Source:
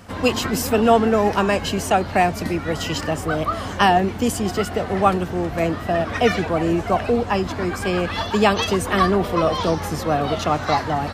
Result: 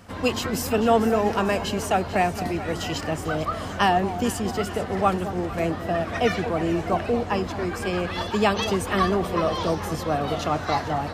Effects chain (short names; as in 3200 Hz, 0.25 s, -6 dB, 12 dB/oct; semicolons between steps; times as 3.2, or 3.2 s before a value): echo with dull and thin repeats by turns 0.222 s, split 1000 Hz, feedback 72%, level -11 dB; gain -4.5 dB